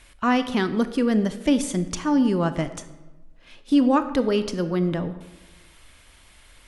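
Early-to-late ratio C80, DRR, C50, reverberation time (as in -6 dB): 14.0 dB, 11.0 dB, 12.5 dB, 1.2 s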